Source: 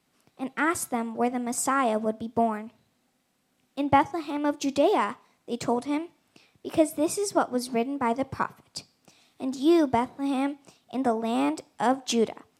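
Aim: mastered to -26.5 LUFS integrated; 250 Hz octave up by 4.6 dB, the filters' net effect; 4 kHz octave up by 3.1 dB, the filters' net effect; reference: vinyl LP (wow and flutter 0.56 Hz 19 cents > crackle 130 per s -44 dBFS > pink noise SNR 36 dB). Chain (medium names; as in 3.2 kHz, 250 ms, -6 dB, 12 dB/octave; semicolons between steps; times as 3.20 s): peaking EQ 250 Hz +5.5 dB; peaking EQ 4 kHz +4 dB; wow and flutter 0.56 Hz 19 cents; crackle 130 per s -44 dBFS; pink noise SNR 36 dB; trim -2 dB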